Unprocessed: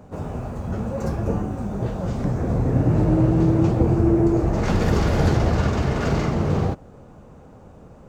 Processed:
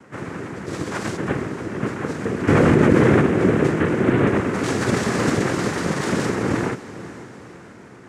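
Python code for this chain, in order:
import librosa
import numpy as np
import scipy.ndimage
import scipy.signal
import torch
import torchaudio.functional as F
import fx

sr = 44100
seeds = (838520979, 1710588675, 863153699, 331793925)

y = fx.sample_sort(x, sr, block=8, at=(0.66, 1.17))
y = fx.high_shelf(y, sr, hz=4700.0, db=9.0)
y = fx.noise_vocoder(y, sr, seeds[0], bands=3)
y = fx.echo_diffused(y, sr, ms=496, feedback_pct=51, wet_db=-15)
y = fx.env_flatten(y, sr, amount_pct=100, at=(2.47, 3.2), fade=0.02)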